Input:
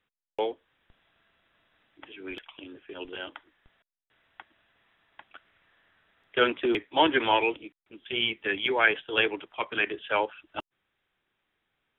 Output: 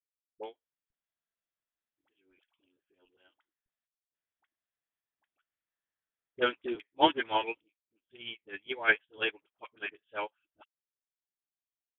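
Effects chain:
all-pass dispersion highs, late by 52 ms, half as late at 700 Hz
expander for the loud parts 2.5 to 1, over −38 dBFS

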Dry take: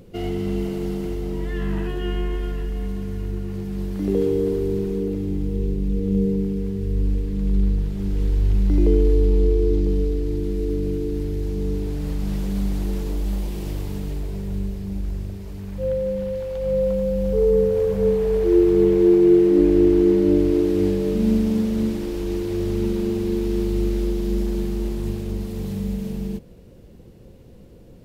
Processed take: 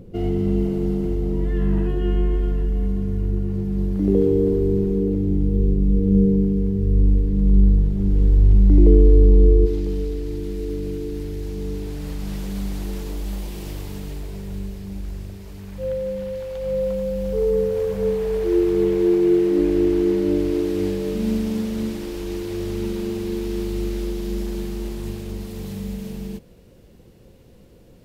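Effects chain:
tilt shelving filter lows +6.5 dB, about 740 Hz, from 0:09.65 lows −3 dB
level −1 dB

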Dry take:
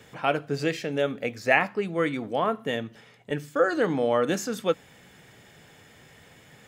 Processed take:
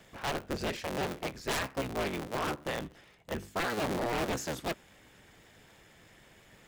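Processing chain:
sub-harmonics by changed cycles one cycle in 3, inverted
wave folding −20.5 dBFS
level −5.5 dB

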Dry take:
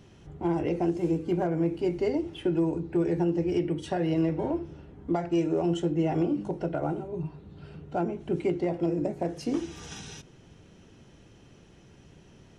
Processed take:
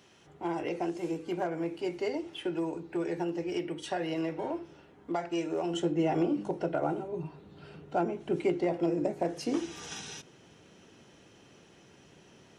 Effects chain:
high-pass filter 860 Hz 6 dB per octave, from 0:05.74 360 Hz
level +2 dB

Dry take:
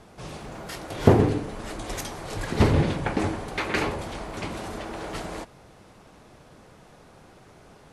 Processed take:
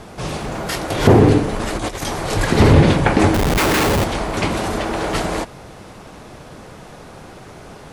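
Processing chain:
0:01.53–0:02.07: compressor whose output falls as the input rises −36 dBFS, ratio −0.5
0:03.34–0:04.04: comparator with hysteresis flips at −34 dBFS
boost into a limiter +14 dB
level −1 dB

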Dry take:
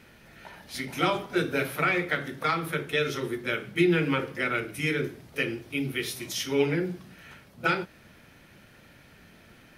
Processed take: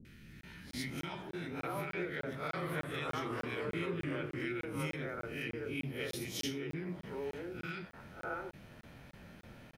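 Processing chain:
peak hold with a rise ahead of every peak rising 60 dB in 0.38 s
high-shelf EQ 2,300 Hz −9.5 dB
downward compressor, threshold −35 dBFS, peak gain reduction 16 dB
three-band delay without the direct sound lows, highs, mids 50/670 ms, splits 340/1,600 Hz
0:02.40–0:04.45: delay with pitch and tempo change per echo 123 ms, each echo −2 semitones, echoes 2, each echo −6 dB
regular buffer underruns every 0.30 s, samples 1,024, zero, from 0:00.41
level +1 dB

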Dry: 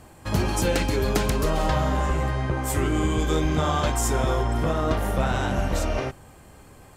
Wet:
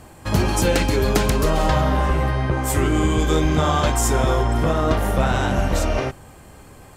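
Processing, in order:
0:01.81–0:02.52: parametric band 7,100 Hz −13 dB 0.23 octaves
level +4.5 dB

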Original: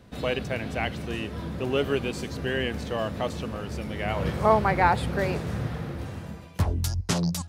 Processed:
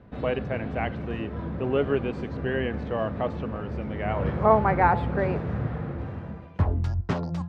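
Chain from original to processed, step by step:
low-pass filter 1,700 Hz 12 dB per octave
hum removal 172.5 Hz, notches 10
level +1.5 dB

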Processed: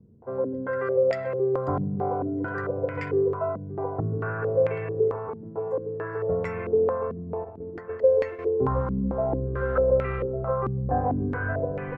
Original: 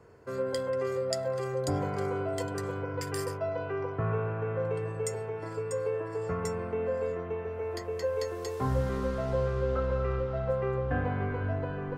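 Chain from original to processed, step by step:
0:07.44–0:08.39: noise gate −34 dBFS, range −10 dB
slap from a distant wall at 220 metres, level −13 dB
low-pass on a step sequencer 4.5 Hz 210–2,200 Hz
level +1 dB

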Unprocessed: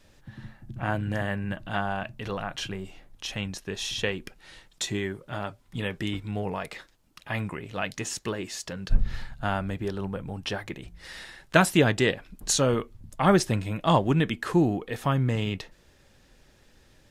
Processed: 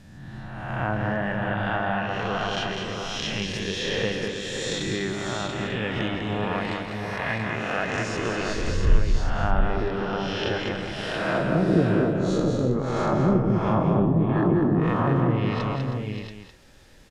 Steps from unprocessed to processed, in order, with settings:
peak hold with a rise ahead of every peak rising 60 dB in 1.28 s
treble cut that deepens with the level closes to 320 Hz, closed at −16.5 dBFS
mains-hum notches 50/100 Hz
on a send: multi-tap delay 198/319/578/683/891 ms −4.5/−11/−9/−5.5/−13 dB

